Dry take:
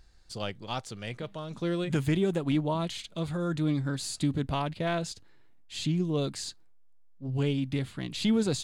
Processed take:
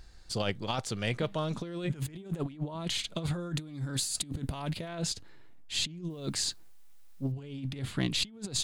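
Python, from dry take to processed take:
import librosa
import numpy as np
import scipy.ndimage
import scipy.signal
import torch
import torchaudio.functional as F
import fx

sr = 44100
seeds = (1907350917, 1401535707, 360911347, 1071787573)

y = fx.high_shelf(x, sr, hz=7400.0, db=12.0, at=(3.55, 4.88))
y = fx.over_compress(y, sr, threshold_db=-34.0, ratio=-0.5)
y = fx.quant_dither(y, sr, seeds[0], bits=12, dither='triangular', at=(6.1, 7.32))
y = y * 10.0 ** (1.0 / 20.0)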